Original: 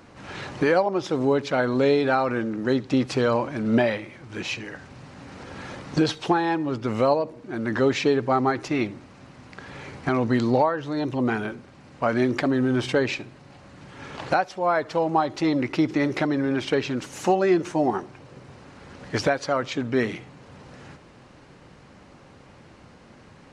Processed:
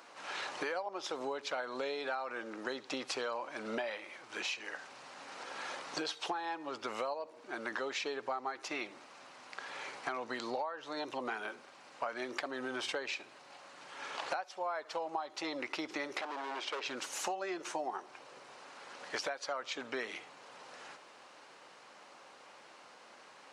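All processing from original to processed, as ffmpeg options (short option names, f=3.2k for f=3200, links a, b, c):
-filter_complex "[0:a]asettb=1/sr,asplit=3[a][b][c];[a]atrim=end=16.214[d];[b]atrim=start=16.21:end=16.86,asetpts=PTS-STARTPTS,afade=t=in:d=0.004:c=qsin,afade=t=out:st=0.646:d=0.004:c=qsin,tiltshelf=f=800:g=5,asoftclip=type=hard:threshold=-22dB,highpass=470,lowpass=7.4k[e];[c]atrim=start=16.856[f];[d][e]acrossfade=d=0.004:c1=hsin:c2=qsin[g];[g][f]acrossfade=d=0.004:c1=qsin:c2=hsin,highpass=720,equalizer=f=1.9k:t=o:w=0.77:g=-3,acompressor=threshold=-35dB:ratio=6"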